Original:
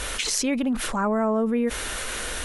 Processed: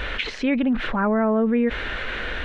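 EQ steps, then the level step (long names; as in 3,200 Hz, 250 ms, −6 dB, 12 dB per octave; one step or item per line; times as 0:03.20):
head-to-tape spacing loss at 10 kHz 42 dB
flat-topped bell 2,500 Hz +9 dB
+4.5 dB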